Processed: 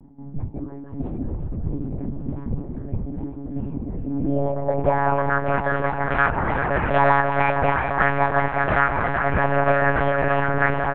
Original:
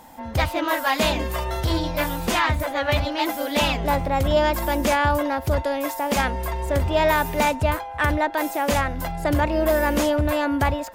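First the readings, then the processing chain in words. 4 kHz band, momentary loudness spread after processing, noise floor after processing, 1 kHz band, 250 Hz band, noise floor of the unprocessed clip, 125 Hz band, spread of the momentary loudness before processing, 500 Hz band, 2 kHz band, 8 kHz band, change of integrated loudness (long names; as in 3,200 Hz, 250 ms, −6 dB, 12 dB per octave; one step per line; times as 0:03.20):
−16.0 dB, 13 LU, −35 dBFS, +1.5 dB, −2.0 dB, −34 dBFS, +0.5 dB, 5 LU, −1.0 dB, +2.5 dB, below −40 dB, 0.0 dB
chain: loose part that buzzes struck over −23 dBFS, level −21 dBFS
low-pass filter 3,100 Hz 6 dB per octave
tilt shelving filter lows −4.5 dB, about 1,100 Hz
comb filter 3 ms, depth 56%
reversed playback
upward compression, threshold −22 dBFS
reversed playback
low-pass filter sweep 200 Hz → 1,500 Hz, 0:03.92–0:05.31
delay that swaps between a low-pass and a high-pass 190 ms, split 1,200 Hz, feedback 90%, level −7 dB
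one-pitch LPC vocoder at 8 kHz 140 Hz
level −1 dB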